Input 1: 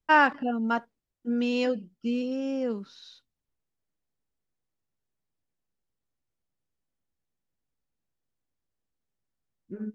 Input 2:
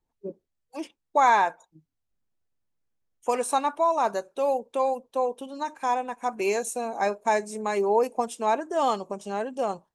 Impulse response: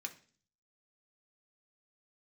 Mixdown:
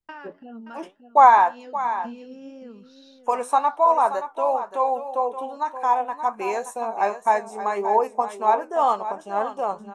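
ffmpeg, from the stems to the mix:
-filter_complex "[0:a]acompressor=threshold=0.0224:ratio=10,volume=0.944,asplit=2[s0][s1];[s1]volume=0.299[s2];[1:a]bandreject=f=4600:w=8.8,agate=range=0.0224:threshold=0.00355:ratio=3:detection=peak,equalizer=f=980:t=o:w=1.8:g=14,volume=0.708,asplit=3[s3][s4][s5];[s4]volume=0.282[s6];[s5]apad=whole_len=438762[s7];[s0][s7]sidechaincompress=threshold=0.112:ratio=8:attack=16:release=244[s8];[s2][s6]amix=inputs=2:normalize=0,aecho=0:1:576:1[s9];[s8][s3][s9]amix=inputs=3:normalize=0,flanger=delay=8.1:depth=4.6:regen=68:speed=1.9:shape=triangular"

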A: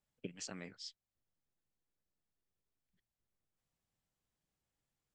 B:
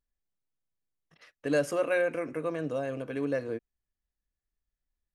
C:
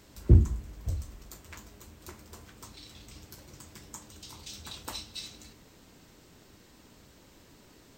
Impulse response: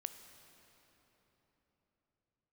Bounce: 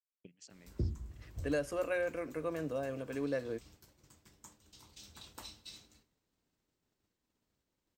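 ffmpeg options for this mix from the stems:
-filter_complex "[0:a]equalizer=f=1000:w=0.61:g=-6,volume=0.355[s0];[1:a]volume=0.562[s1];[2:a]adelay=500,volume=0.251,asplit=2[s2][s3];[s3]volume=0.398[s4];[3:a]atrim=start_sample=2205[s5];[s4][s5]afir=irnorm=-1:irlink=0[s6];[s0][s1][s2][s6]amix=inputs=4:normalize=0,agate=range=0.0224:threshold=0.002:ratio=3:detection=peak,alimiter=level_in=1.06:limit=0.0631:level=0:latency=1:release=477,volume=0.944"

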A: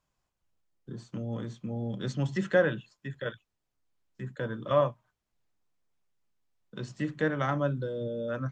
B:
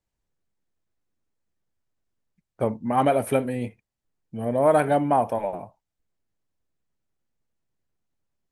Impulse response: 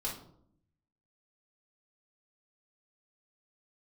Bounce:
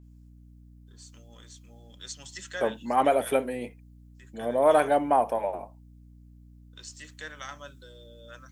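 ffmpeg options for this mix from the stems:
-filter_complex "[0:a]highpass=f=1200:p=1,crystalizer=i=6.5:c=0,adynamicequalizer=threshold=0.00398:dfrequency=4200:dqfactor=0.7:tfrequency=4200:tqfactor=0.7:attack=5:release=100:ratio=0.375:range=3:mode=boostabove:tftype=highshelf,volume=0.299[s0];[1:a]highpass=320,aeval=exprs='val(0)+0.00355*(sin(2*PI*60*n/s)+sin(2*PI*2*60*n/s)/2+sin(2*PI*3*60*n/s)/3+sin(2*PI*4*60*n/s)/4+sin(2*PI*5*60*n/s)/5)':c=same,volume=0.891[s1];[s0][s1]amix=inputs=2:normalize=0"

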